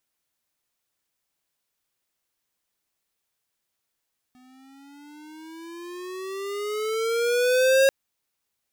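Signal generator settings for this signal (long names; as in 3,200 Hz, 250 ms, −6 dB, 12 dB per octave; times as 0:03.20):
pitch glide with a swell square, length 3.54 s, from 250 Hz, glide +13.5 semitones, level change +37 dB, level −16.5 dB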